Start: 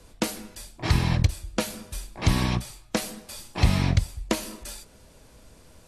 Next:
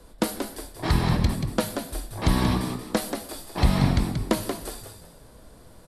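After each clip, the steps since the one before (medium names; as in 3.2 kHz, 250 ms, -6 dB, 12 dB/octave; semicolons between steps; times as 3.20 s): fifteen-band graphic EQ 100 Hz -9 dB, 2.5 kHz -8 dB, 6.3 kHz -9 dB; frequency-shifting echo 182 ms, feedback 32%, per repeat +63 Hz, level -7 dB; trim +3 dB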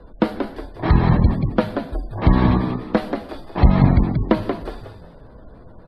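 spectral gate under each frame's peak -30 dB strong; distance through air 370 m; trim +7.5 dB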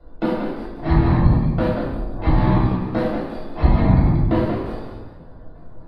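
reverberation RT60 1.1 s, pre-delay 3 ms, DRR -9 dB; trim -13.5 dB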